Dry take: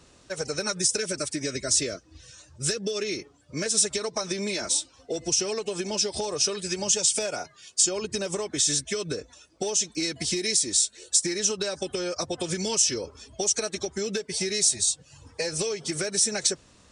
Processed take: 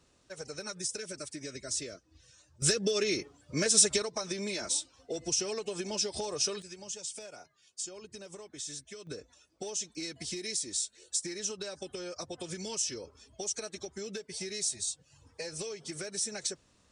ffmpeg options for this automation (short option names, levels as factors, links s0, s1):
-af "asetnsamples=n=441:p=0,asendcmd='2.62 volume volume 0dB;4.02 volume volume -6dB;6.62 volume volume -17dB;9.07 volume volume -10.5dB',volume=0.266"